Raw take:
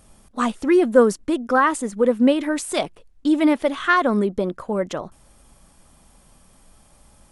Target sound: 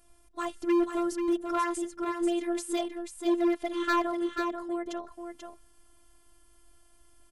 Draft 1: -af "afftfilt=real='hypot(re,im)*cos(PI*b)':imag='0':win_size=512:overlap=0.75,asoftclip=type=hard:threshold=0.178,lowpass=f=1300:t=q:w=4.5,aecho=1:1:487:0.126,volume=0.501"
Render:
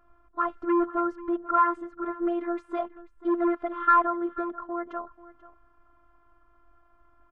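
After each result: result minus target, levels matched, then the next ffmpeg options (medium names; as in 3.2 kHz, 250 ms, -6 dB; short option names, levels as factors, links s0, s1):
echo-to-direct -11.5 dB; 1 kHz band +5.0 dB
-af "afftfilt=real='hypot(re,im)*cos(PI*b)':imag='0':win_size=512:overlap=0.75,asoftclip=type=hard:threshold=0.178,lowpass=f=1300:t=q:w=4.5,aecho=1:1:487:0.473,volume=0.501"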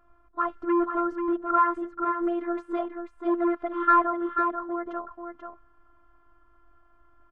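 1 kHz band +5.0 dB
-af "afftfilt=real='hypot(re,im)*cos(PI*b)':imag='0':win_size=512:overlap=0.75,asoftclip=type=hard:threshold=0.178,aecho=1:1:487:0.473,volume=0.501"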